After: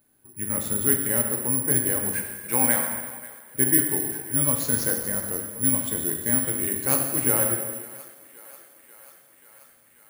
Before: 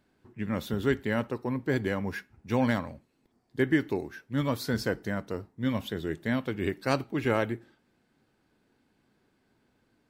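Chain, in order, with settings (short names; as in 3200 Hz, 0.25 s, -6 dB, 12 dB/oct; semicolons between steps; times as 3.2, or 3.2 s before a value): 2.15–2.93 speaker cabinet 170–6500 Hz, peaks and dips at 240 Hz -4 dB, 930 Hz +5 dB, 1500 Hz +5 dB, 2300 Hz +8 dB; on a send: thinning echo 0.538 s, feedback 79%, high-pass 430 Hz, level -18.5 dB; on the sum: non-linear reverb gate 0.48 s falling, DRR 1.5 dB; careless resampling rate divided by 4×, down none, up zero stuff; gain -3 dB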